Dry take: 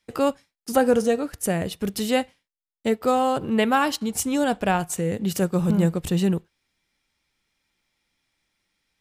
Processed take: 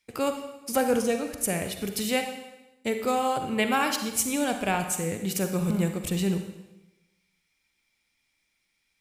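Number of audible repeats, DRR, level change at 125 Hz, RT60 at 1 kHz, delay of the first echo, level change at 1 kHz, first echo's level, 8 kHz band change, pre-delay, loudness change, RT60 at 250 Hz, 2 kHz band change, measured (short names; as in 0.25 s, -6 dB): none, 6.0 dB, -5.5 dB, 0.95 s, none, -4.0 dB, none, +1.5 dB, 39 ms, -4.0 dB, 1.0 s, -1.5 dB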